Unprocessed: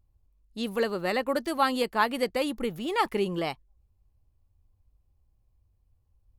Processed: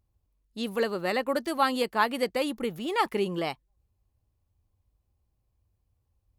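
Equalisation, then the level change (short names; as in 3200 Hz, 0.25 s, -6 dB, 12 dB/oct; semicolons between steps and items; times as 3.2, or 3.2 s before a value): HPF 95 Hz 6 dB/oct; 0.0 dB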